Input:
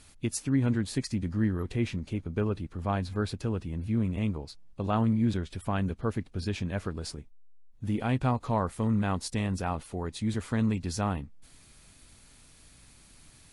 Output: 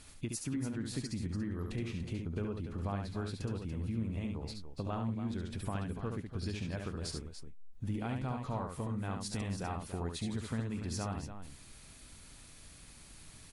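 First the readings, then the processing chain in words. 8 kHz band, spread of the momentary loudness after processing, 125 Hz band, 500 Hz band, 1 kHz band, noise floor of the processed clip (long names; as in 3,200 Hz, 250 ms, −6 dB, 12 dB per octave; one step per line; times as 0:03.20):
−4.0 dB, 16 LU, −7.5 dB, −8.0 dB, −9.0 dB, −55 dBFS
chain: downward compressor 5 to 1, threshold −36 dBFS, peak gain reduction 13.5 dB
on a send: loudspeakers that aren't time-aligned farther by 24 metres −5 dB, 99 metres −10 dB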